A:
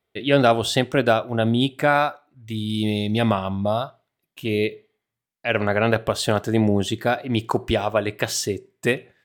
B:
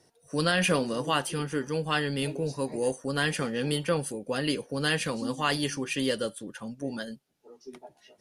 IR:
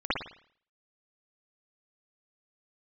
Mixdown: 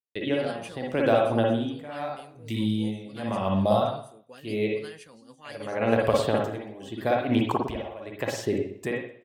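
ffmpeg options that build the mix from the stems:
-filter_complex "[0:a]equalizer=f=1400:w=4.6:g=-7,acrossover=split=680|1800[s0][s1][s2];[s0]acompressor=threshold=0.0794:ratio=4[s3];[s1]acompressor=threshold=0.0355:ratio=4[s4];[s2]acompressor=threshold=0.01:ratio=4[s5];[s3][s4][s5]amix=inputs=3:normalize=0,tremolo=f=0.82:d=0.91,volume=0.944,asplit=3[s6][s7][s8];[s7]volume=0.398[s9];[s8]volume=0.075[s10];[1:a]tremolo=f=6:d=0.48,volume=0.168[s11];[2:a]atrim=start_sample=2205[s12];[s9][s12]afir=irnorm=-1:irlink=0[s13];[s10]aecho=0:1:126|252|378|504:1|0.27|0.0729|0.0197[s14];[s6][s11][s13][s14]amix=inputs=4:normalize=0,lowshelf=f=240:g=-4,agate=range=0.0224:threshold=0.00178:ratio=3:detection=peak"

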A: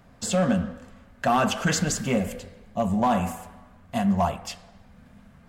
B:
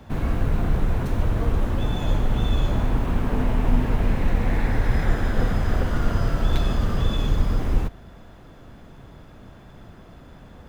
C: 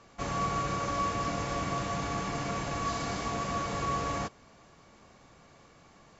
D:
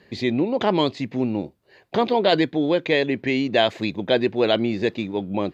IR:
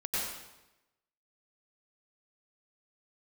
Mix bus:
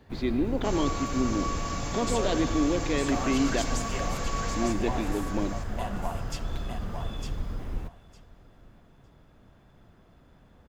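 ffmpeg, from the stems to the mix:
-filter_complex "[0:a]highpass=370,acompressor=threshold=0.0224:ratio=3,adelay=1850,volume=0.75,asplit=2[s0][s1];[s1]volume=0.531[s2];[1:a]volume=0.251,asplit=2[s3][s4];[s4]volume=0.075[s5];[2:a]highshelf=f=4600:g=11.5,adelay=450,volume=0.631,asplit=2[s6][s7];[s7]volume=0.422[s8];[3:a]equalizer=f=290:w=2.2:g=9.5,alimiter=limit=0.398:level=0:latency=1,volume=0.266,asplit=3[s9][s10][s11];[s9]atrim=end=3.62,asetpts=PTS-STARTPTS,afade=t=out:st=3.616:d=0.004:c=hsin[s12];[s10]atrim=start=3.62:end=4.56,asetpts=PTS-STARTPTS,volume=0[s13];[s11]atrim=start=4.56,asetpts=PTS-STARTPTS,afade=t=in:d=0.004:c=hsin[s14];[s12][s13][s14]concat=n=3:v=0:a=1,asplit=2[s15][s16];[s16]volume=0.168[s17];[4:a]atrim=start_sample=2205[s18];[s17][s18]afir=irnorm=-1:irlink=0[s19];[s2][s5][s8]amix=inputs=3:normalize=0,aecho=0:1:906|1812|2718:1|0.16|0.0256[s20];[s0][s3][s6][s15][s19][s20]amix=inputs=6:normalize=0"

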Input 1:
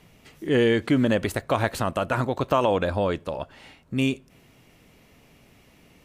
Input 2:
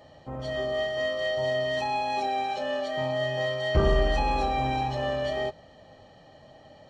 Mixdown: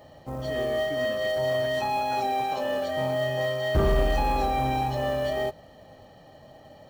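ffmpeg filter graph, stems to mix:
-filter_complex "[0:a]volume=0.126[s0];[1:a]acrusher=bits=6:mode=log:mix=0:aa=0.000001,volume=1.33[s1];[s0][s1]amix=inputs=2:normalize=0,equalizer=f=3100:w=0.57:g=-3,asoftclip=type=tanh:threshold=0.188"

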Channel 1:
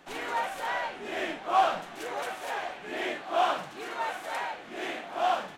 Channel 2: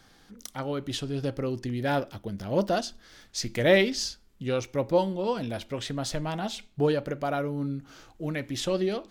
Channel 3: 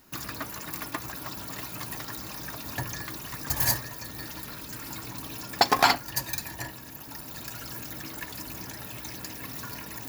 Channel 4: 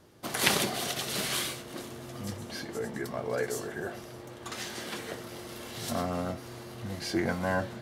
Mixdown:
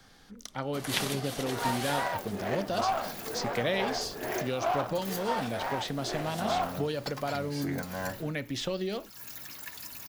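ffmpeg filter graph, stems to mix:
-filter_complex "[0:a]alimiter=limit=0.0944:level=0:latency=1:release=213,adynamicsmooth=sensitivity=2.5:basefreq=550,adelay=1300,volume=1.12[s0];[1:a]acrossover=split=130|2700|6600[s1][s2][s3][s4];[s1]acompressor=threshold=0.00398:ratio=4[s5];[s2]acompressor=threshold=0.0316:ratio=4[s6];[s3]acompressor=threshold=0.0158:ratio=4[s7];[s4]acompressor=threshold=0.00158:ratio=4[s8];[s5][s6][s7][s8]amix=inputs=4:normalize=0,volume=1.06,asplit=2[s9][s10];[2:a]tiltshelf=f=970:g=-5.5,adelay=1450,volume=0.398[s11];[3:a]adelay=500,volume=0.473[s12];[s10]apad=whole_len=508490[s13];[s11][s13]sidechaincompress=threshold=0.00562:ratio=8:attack=16:release=285[s14];[s0][s9][s14][s12]amix=inputs=4:normalize=0,equalizer=f=330:w=7.7:g=-6"

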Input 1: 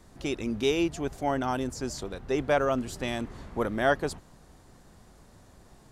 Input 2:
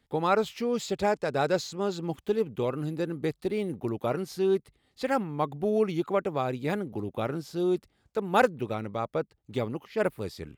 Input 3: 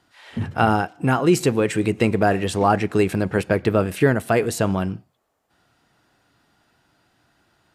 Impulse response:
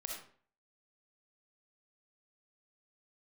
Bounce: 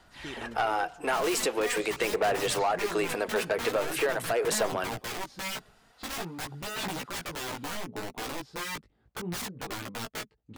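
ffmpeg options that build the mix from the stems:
-filter_complex "[0:a]volume=0.282[s0];[1:a]aemphasis=mode=reproduction:type=75fm,aeval=exprs='(mod(22.4*val(0)+1,2)-1)/22.4':c=same,flanger=delay=15.5:depth=2.7:speed=0.69,adelay=1000,volume=0.944[s1];[2:a]highpass=f=430:w=0.5412,highpass=f=430:w=1.3066,acompressor=threshold=0.0708:ratio=6,volume=1.19,asplit=2[s2][s3];[s3]apad=whole_len=260700[s4];[s0][s4]sidechaincompress=threshold=0.0316:ratio=8:attack=16:release=924[s5];[s5][s1][s2]amix=inputs=3:normalize=0,aphaser=in_gain=1:out_gain=1:delay=4.7:decay=0.33:speed=0.44:type=sinusoidal,asoftclip=type=tanh:threshold=0.1"

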